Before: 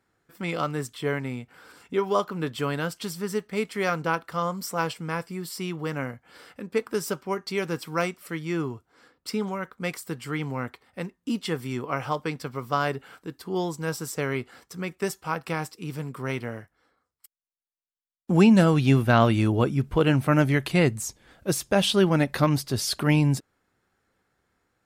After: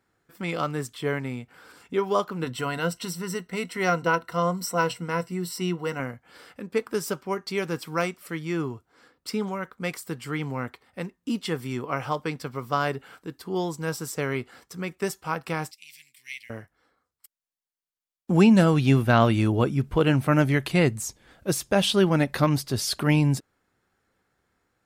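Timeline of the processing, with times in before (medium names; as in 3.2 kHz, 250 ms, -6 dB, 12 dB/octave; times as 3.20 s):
2.42–6.00 s: rippled EQ curve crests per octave 2, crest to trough 11 dB
15.71–16.50 s: elliptic high-pass 2.1 kHz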